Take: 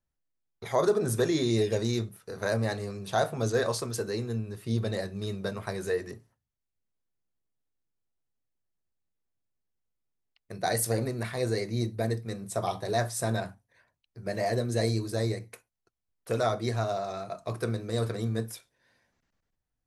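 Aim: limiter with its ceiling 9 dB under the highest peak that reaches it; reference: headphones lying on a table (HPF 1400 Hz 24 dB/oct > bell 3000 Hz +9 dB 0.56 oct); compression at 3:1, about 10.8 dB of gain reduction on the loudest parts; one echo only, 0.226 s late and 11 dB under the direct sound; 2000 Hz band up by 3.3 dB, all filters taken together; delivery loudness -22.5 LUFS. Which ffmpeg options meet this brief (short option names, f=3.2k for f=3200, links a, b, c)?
-af "equalizer=f=2k:t=o:g=3.5,acompressor=threshold=-35dB:ratio=3,alimiter=level_in=4dB:limit=-24dB:level=0:latency=1,volume=-4dB,highpass=f=1.4k:w=0.5412,highpass=f=1.4k:w=1.3066,equalizer=f=3k:t=o:w=0.56:g=9,aecho=1:1:226:0.282,volume=22.5dB"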